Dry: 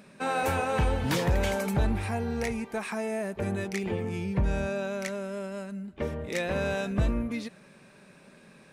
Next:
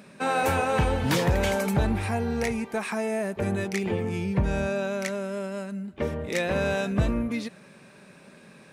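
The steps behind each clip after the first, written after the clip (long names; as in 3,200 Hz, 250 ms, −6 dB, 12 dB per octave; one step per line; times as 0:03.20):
high-pass filter 61 Hz
level +3.5 dB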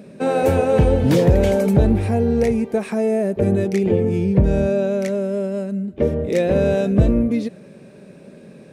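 low shelf with overshoot 720 Hz +10 dB, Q 1.5
level −1 dB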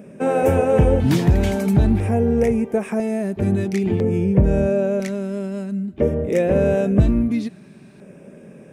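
auto-filter notch square 0.5 Hz 510–4,200 Hz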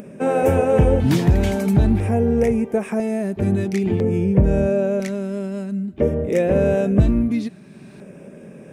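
upward compression, threshold −34 dBFS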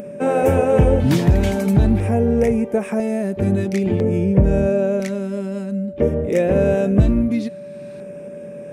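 steady tone 580 Hz −33 dBFS
level +1 dB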